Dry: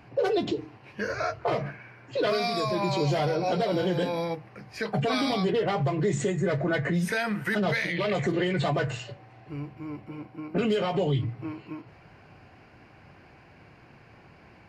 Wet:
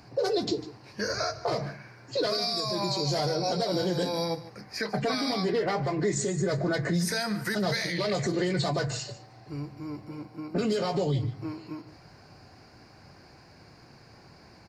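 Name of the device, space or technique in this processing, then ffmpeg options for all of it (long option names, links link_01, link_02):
over-bright horn tweeter: -filter_complex "[0:a]highshelf=frequency=3700:width_type=q:width=3:gain=7.5,alimiter=limit=-18.5dB:level=0:latency=1:release=200,asettb=1/sr,asplit=3[link_01][link_02][link_03];[link_01]atrim=end=4.614[link_04];[link_02]atrim=start=4.61:end=6.16,asetpts=PTS-STARTPTS,afade=type=in:duration=0.004:curve=qsin,afade=type=out:start_time=1.546:duration=0.004:curve=qsin,equalizer=frequency=125:width_type=o:width=1:gain=-6,equalizer=frequency=250:width_type=o:width=1:gain=3,equalizer=frequency=2000:width_type=o:width=1:gain=7,equalizer=frequency=4000:width_type=o:width=1:gain=-4,equalizer=frequency=8000:width_type=o:width=1:gain=-5[link_05];[link_03]atrim=start=6.156[link_06];[link_04][link_05]acrossfade=duration=0.004:curve1=hsin:curve2=qsin[link_07];[link_07][link_06]acrossfade=duration=0.004:curve1=qsin:curve2=hsin,aecho=1:1:149:0.15"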